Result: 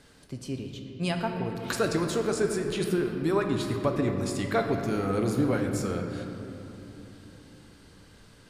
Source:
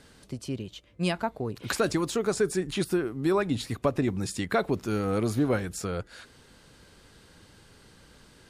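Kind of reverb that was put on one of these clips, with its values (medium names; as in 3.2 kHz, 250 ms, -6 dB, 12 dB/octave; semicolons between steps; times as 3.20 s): simulated room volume 180 m³, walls hard, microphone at 0.32 m; trim -2 dB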